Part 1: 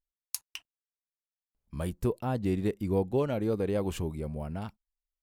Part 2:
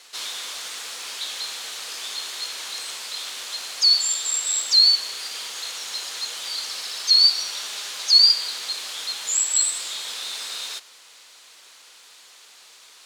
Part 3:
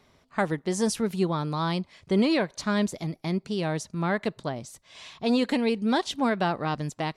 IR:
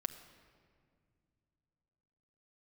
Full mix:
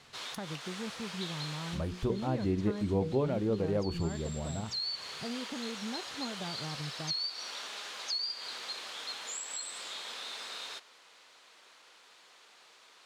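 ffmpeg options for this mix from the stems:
-filter_complex "[0:a]bandreject=frequency=60:width_type=h:width=6,bandreject=frequency=120:width_type=h:width=6,bandreject=frequency=180:width_type=h:width=6,bandreject=frequency=240:width_type=h:width=6,bandreject=frequency=300:width_type=h:width=6,bandreject=frequency=360:width_type=h:width=6,bandreject=frequency=420:width_type=h:width=6,bandreject=frequency=480:width_type=h:width=6,volume=-1dB,asplit=2[link_01][link_02];[1:a]acompressor=threshold=-21dB:ratio=6,volume=-2.5dB[link_03];[2:a]equalizer=frequency=130:width=1.5:gain=10,acompressor=threshold=-36dB:ratio=2.5,volume=-6.5dB[link_04];[link_02]apad=whole_len=575934[link_05];[link_03][link_05]sidechaincompress=threshold=-43dB:ratio=8:attack=49:release=227[link_06];[link_01][link_06][link_04]amix=inputs=3:normalize=0,lowpass=frequency=1600:poles=1"

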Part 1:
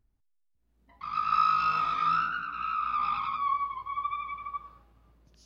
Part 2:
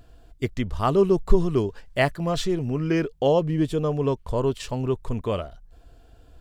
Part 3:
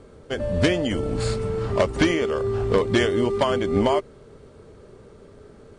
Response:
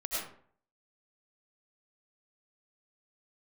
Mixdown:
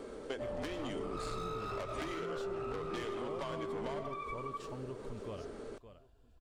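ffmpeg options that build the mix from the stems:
-filter_complex "[0:a]asoftclip=type=hard:threshold=-25.5dB,volume=-0.5dB[link_01];[1:a]alimiter=limit=-14.5dB:level=0:latency=1,volume=-15.5dB,asplit=2[link_02][link_03];[link_03]volume=-15dB[link_04];[2:a]lowshelf=frequency=170:gain=8.5,asoftclip=type=tanh:threshold=-20dB,volume=2dB,asplit=2[link_05][link_06];[link_06]volume=-21dB[link_07];[link_01][link_05]amix=inputs=2:normalize=0,highpass=frequency=240:width=0.5412,highpass=frequency=240:width=1.3066,acompressor=threshold=-30dB:ratio=6,volume=0dB[link_08];[3:a]atrim=start_sample=2205[link_09];[link_07][link_09]afir=irnorm=-1:irlink=0[link_10];[link_04]aecho=0:1:566|1132|1698|2264:1|0.24|0.0576|0.0138[link_11];[link_02][link_08][link_10][link_11]amix=inputs=4:normalize=0,acompressor=threshold=-40dB:ratio=2.5"

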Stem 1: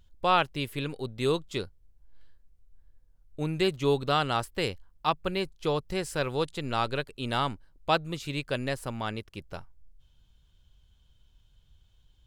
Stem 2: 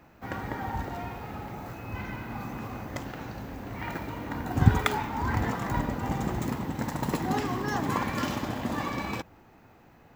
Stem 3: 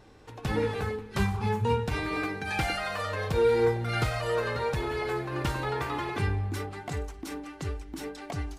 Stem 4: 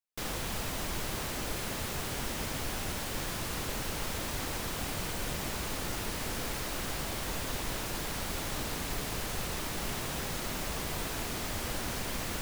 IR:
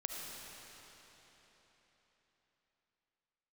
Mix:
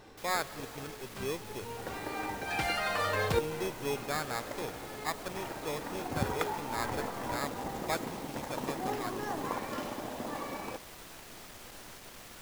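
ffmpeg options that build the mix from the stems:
-filter_complex "[0:a]lowpass=3200,acrusher=samples=15:mix=1:aa=0.000001,volume=-10dB,asplit=3[link_01][link_02][link_03];[link_02]volume=-9.5dB[link_04];[1:a]equalizer=frequency=520:width=0.77:gain=9.5,adelay=1550,volume=-10.5dB[link_05];[2:a]volume=3dB[link_06];[3:a]aeval=exprs='clip(val(0),-1,0.02)':channel_layout=same,volume=-15.5dB,asplit=2[link_07][link_08];[link_08]volume=-3dB[link_09];[link_03]apad=whole_len=378668[link_10];[link_06][link_10]sidechaincompress=threshold=-55dB:ratio=8:attack=21:release=1050[link_11];[4:a]atrim=start_sample=2205[link_12];[link_04][link_09]amix=inputs=2:normalize=0[link_13];[link_13][link_12]afir=irnorm=-1:irlink=0[link_14];[link_01][link_05][link_11][link_07][link_14]amix=inputs=5:normalize=0,lowshelf=frequency=210:gain=-8,acrusher=bits=5:mode=log:mix=0:aa=0.000001"

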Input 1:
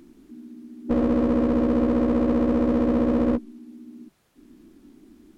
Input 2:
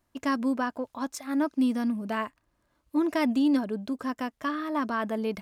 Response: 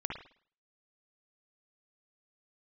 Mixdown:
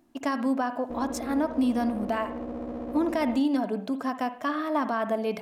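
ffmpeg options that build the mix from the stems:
-filter_complex "[0:a]volume=-15dB[link_01];[1:a]highpass=130,volume=-1dB,asplit=2[link_02][link_03];[link_03]volume=-8.5dB[link_04];[2:a]atrim=start_sample=2205[link_05];[link_04][link_05]afir=irnorm=-1:irlink=0[link_06];[link_01][link_02][link_06]amix=inputs=3:normalize=0,equalizer=frequency=720:width_type=o:width=0.47:gain=9.5,alimiter=limit=-17dB:level=0:latency=1:release=169"

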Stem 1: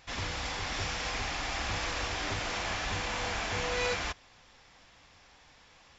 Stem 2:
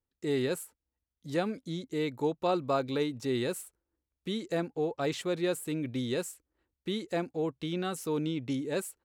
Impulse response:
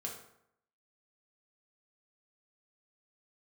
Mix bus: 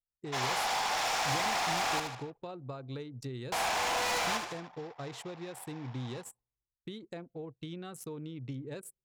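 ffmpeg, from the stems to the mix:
-filter_complex "[0:a]highpass=600,equalizer=frequency=770:width=1.1:gain=13,volume=31.5dB,asoftclip=hard,volume=-31.5dB,adelay=250,volume=0.5dB,asplit=3[link_01][link_02][link_03];[link_01]atrim=end=2,asetpts=PTS-STARTPTS,afade=type=out:start_time=1.996:duration=0.004:curve=hsin[link_04];[link_02]atrim=start=2:end=3.52,asetpts=PTS-STARTPTS,volume=0[link_05];[link_03]atrim=start=3.52,asetpts=PTS-STARTPTS,afade=type=in:duration=0.004:curve=hsin[link_06];[link_04][link_05][link_06]concat=n=3:v=0:a=1,asplit=3[link_07][link_08][link_09];[link_08]volume=-19.5dB[link_10];[link_09]volume=-6.5dB[link_11];[1:a]acompressor=threshold=-35dB:ratio=8,equalizer=frequency=130:width_type=o:width=0.39:gain=11.5,volume=-5.5dB,asplit=2[link_12][link_13];[link_13]volume=-17dB[link_14];[2:a]atrim=start_sample=2205[link_15];[link_10][link_14]amix=inputs=2:normalize=0[link_16];[link_16][link_15]afir=irnorm=-1:irlink=0[link_17];[link_11]aecho=0:1:76|152|228|304|380|456|532|608:1|0.55|0.303|0.166|0.0915|0.0503|0.0277|0.0152[link_18];[link_07][link_12][link_17][link_18]amix=inputs=4:normalize=0,anlmdn=0.01,highshelf=frequency=4900:gain=6"

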